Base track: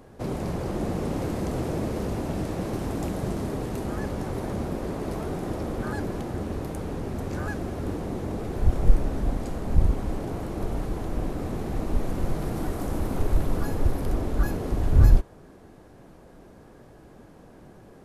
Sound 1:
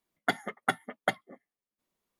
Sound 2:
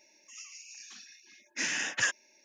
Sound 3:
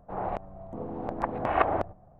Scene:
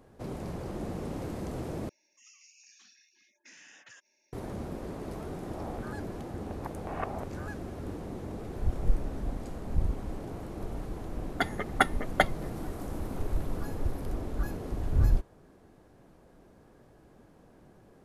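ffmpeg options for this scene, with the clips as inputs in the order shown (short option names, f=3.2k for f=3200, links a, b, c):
-filter_complex "[0:a]volume=-8dB[a];[2:a]acompressor=threshold=-42dB:ratio=6:attack=3.2:release=140:knee=1:detection=peak[b];[1:a]dynaudnorm=f=120:g=7:m=11.5dB[c];[a]asplit=2[d][e];[d]atrim=end=1.894[f];[b]atrim=end=2.44,asetpts=PTS-STARTPTS,volume=-9.5dB[g];[e]atrim=start=4.326[h];[3:a]atrim=end=2.19,asetpts=PTS-STARTPTS,volume=-12dB,afade=t=in:d=0.004:c=hsin,afade=t=out:st=2.186:d=0.004:c=hsin,adelay=5420[i];[c]atrim=end=2.19,asetpts=PTS-STARTPTS,volume=-4dB,afade=t=in:d=0.004:c=hsin,afade=t=out:st=2.186:d=0.004:c=hsin,adelay=11120[j];[f][g]acrossfade=d=0.004:c1=hsin:c2=hsin[k];[k][h]acrossfade=d=0.004:c1=hsin:c2=hsin[l];[l][i][j]amix=inputs=3:normalize=0"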